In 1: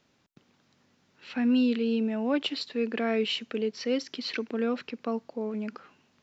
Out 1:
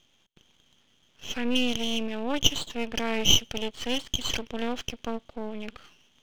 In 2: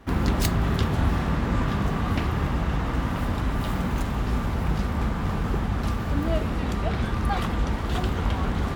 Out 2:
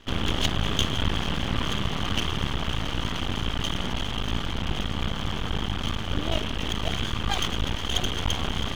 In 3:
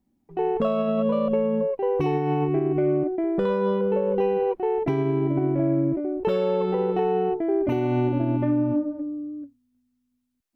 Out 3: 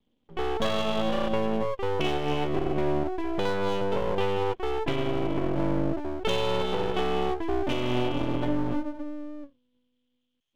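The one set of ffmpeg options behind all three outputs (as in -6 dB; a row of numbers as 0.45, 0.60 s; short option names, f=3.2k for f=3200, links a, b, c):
-af "lowpass=f=3.2k:t=q:w=13,aeval=exprs='max(val(0),0)':c=same"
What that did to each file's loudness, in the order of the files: +2.0, -2.0, -4.5 LU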